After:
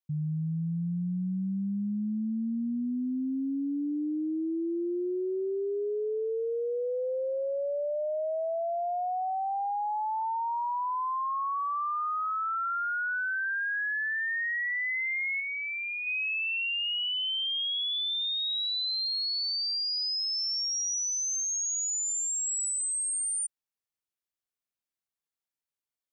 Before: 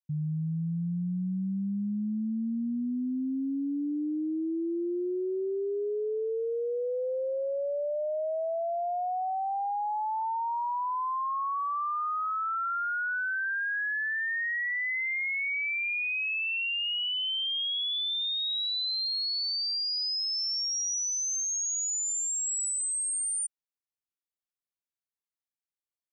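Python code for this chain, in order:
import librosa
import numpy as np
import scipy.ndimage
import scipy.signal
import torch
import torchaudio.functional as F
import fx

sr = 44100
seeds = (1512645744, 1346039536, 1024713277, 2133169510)

y = fx.tilt_eq(x, sr, slope=-3.0, at=(15.4, 16.07))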